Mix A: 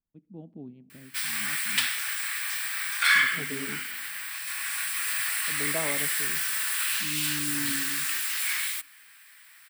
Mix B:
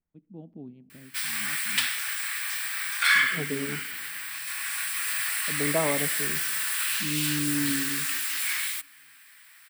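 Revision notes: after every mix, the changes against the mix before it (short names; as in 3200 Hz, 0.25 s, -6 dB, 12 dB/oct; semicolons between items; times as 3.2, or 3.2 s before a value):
second voice +7.0 dB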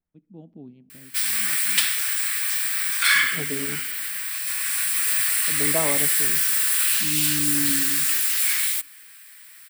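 master: add high shelf 4200 Hz +9.5 dB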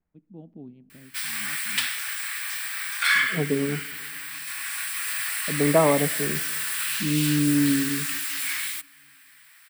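second voice +8.0 dB; master: add high shelf 4200 Hz -9.5 dB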